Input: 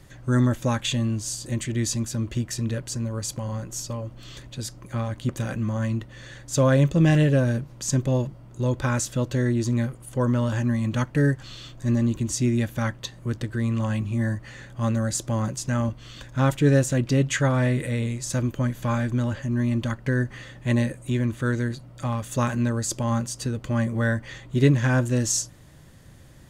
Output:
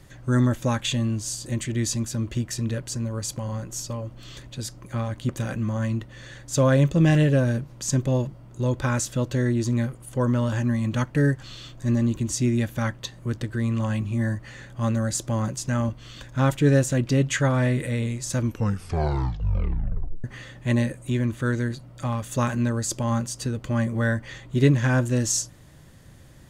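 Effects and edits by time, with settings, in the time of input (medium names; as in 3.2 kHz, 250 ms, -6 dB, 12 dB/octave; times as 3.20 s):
18.38 s: tape stop 1.86 s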